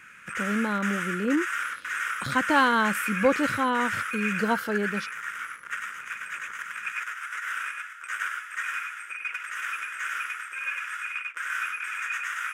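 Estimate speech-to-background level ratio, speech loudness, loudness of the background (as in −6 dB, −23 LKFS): 4.0 dB, −27.0 LKFS, −31.0 LKFS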